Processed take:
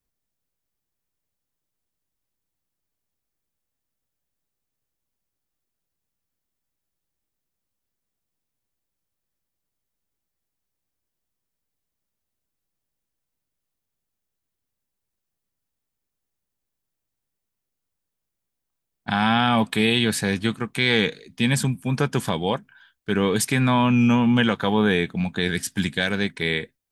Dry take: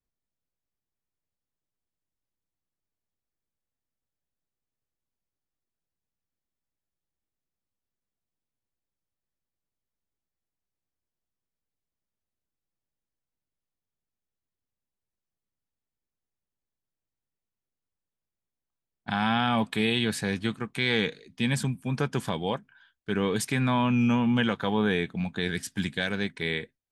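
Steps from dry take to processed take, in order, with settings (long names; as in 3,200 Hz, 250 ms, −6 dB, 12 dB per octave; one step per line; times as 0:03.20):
high-shelf EQ 8,800 Hz +6 dB
level +5.5 dB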